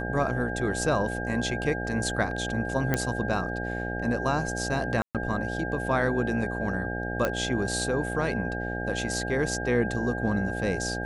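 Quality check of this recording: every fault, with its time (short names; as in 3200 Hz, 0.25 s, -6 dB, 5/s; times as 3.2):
buzz 60 Hz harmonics 14 -33 dBFS
tone 1600 Hz -34 dBFS
2.94 pop -11 dBFS
5.02–5.15 gap 0.127 s
7.25 pop -12 dBFS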